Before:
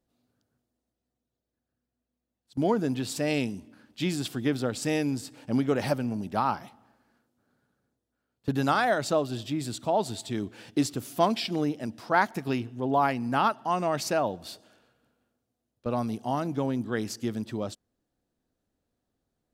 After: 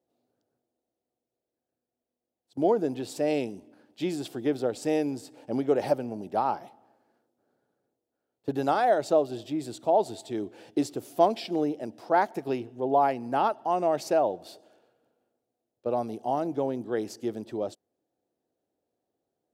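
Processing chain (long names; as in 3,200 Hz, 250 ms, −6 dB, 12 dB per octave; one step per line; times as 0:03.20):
high-pass filter 110 Hz
flat-topped bell 520 Hz +10 dB
level −6.5 dB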